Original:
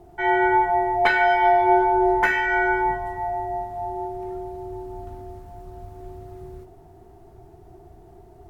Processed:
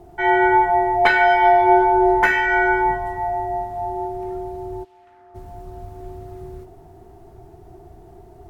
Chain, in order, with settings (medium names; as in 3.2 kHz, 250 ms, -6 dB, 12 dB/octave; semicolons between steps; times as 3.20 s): 4.83–5.34 s: band-pass filter 3.4 kHz -> 1.3 kHz, Q 1.7; trim +3.5 dB